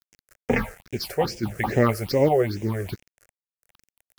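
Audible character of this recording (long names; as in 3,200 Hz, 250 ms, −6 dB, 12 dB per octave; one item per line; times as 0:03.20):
a quantiser's noise floor 8 bits, dither none
sample-and-hold tremolo
phaser sweep stages 6, 2.4 Hz, lowest notch 240–1,200 Hz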